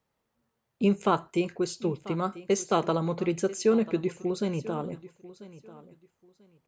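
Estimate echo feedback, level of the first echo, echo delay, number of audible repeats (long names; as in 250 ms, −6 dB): 21%, −17.5 dB, 991 ms, 2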